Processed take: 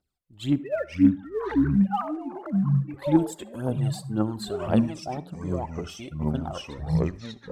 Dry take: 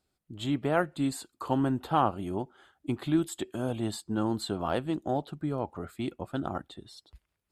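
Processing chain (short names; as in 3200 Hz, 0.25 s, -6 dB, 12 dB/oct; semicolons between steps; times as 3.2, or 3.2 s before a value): 0.58–2.94 sine-wave speech; spectral noise reduction 6 dB; phaser 1.9 Hz, delay 2 ms, feedback 71%; echoes that change speed 0.324 s, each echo -6 st, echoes 2; reverb RT60 0.30 s, pre-delay 58 ms, DRR 18 dB; gain -3 dB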